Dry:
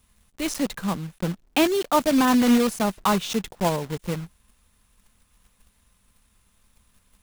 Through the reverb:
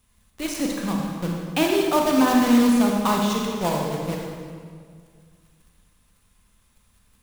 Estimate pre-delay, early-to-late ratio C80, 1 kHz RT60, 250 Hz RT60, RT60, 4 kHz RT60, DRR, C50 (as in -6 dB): 28 ms, 2.5 dB, 1.9 s, 2.3 s, 2.0 s, 1.5 s, -0.5 dB, 1.0 dB